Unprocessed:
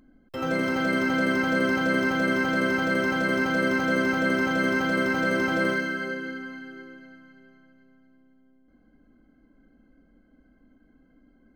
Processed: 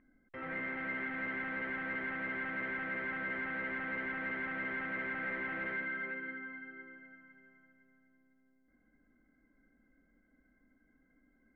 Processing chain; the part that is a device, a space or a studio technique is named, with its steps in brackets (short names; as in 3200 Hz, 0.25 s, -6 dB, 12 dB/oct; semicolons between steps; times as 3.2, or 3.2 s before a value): overdriven synthesiser ladder filter (soft clip -29 dBFS, distortion -8 dB; ladder low-pass 2100 Hz, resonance 75%)